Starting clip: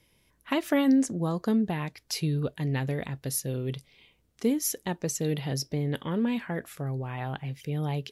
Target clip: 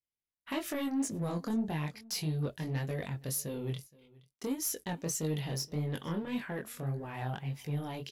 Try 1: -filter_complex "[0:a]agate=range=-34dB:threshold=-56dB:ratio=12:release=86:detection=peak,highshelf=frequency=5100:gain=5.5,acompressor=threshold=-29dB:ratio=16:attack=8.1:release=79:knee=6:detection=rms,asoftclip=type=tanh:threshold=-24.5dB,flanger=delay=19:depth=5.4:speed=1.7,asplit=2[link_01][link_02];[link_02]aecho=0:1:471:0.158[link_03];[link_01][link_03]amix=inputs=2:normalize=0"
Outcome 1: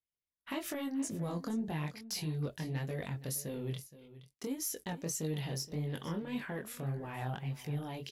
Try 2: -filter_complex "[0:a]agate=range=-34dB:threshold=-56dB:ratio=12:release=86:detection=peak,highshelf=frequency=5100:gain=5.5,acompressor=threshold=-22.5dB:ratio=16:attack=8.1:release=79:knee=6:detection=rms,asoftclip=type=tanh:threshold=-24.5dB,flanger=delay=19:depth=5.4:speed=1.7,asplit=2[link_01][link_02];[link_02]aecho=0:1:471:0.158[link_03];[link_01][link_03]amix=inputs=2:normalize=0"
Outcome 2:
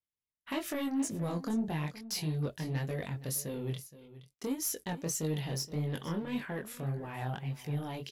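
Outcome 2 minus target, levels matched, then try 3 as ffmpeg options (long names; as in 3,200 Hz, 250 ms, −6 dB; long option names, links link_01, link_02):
echo-to-direct +7.5 dB
-filter_complex "[0:a]agate=range=-34dB:threshold=-56dB:ratio=12:release=86:detection=peak,highshelf=frequency=5100:gain=5.5,acompressor=threshold=-22.5dB:ratio=16:attack=8.1:release=79:knee=6:detection=rms,asoftclip=type=tanh:threshold=-24.5dB,flanger=delay=19:depth=5.4:speed=1.7,asplit=2[link_01][link_02];[link_02]aecho=0:1:471:0.0668[link_03];[link_01][link_03]amix=inputs=2:normalize=0"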